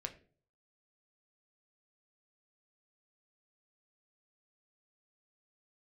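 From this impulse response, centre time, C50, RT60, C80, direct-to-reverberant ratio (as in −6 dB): 10 ms, 14.0 dB, 0.45 s, 18.5 dB, 4.5 dB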